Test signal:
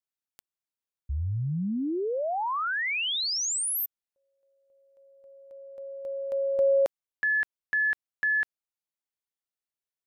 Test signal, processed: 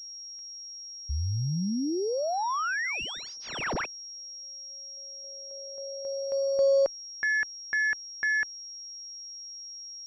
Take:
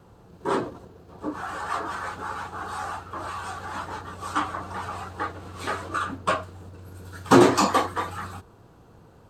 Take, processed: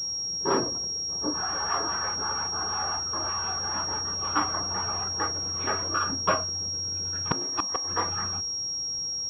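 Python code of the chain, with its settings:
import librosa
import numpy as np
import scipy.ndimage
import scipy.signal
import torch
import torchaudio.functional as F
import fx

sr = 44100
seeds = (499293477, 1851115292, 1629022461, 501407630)

y = fx.cheby_harmonics(x, sr, harmonics=(6,), levels_db=(-37,), full_scale_db=-2.5)
y = fx.gate_flip(y, sr, shuts_db=-9.0, range_db=-25)
y = fx.pwm(y, sr, carrier_hz=5600.0)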